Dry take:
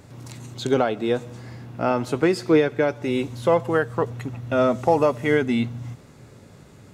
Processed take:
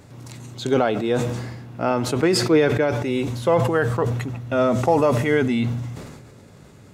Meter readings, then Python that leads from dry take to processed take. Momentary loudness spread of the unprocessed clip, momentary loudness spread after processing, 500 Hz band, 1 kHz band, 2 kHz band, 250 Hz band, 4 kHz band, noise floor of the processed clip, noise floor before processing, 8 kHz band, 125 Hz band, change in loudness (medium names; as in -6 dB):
19 LU, 14 LU, +1.0 dB, +1.0 dB, +1.5 dB, +1.5 dB, +5.0 dB, -47 dBFS, -48 dBFS, no reading, +5.5 dB, +1.5 dB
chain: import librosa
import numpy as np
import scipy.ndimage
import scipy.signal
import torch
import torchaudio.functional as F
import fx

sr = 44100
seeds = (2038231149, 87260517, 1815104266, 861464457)

y = fx.sustainer(x, sr, db_per_s=39.0)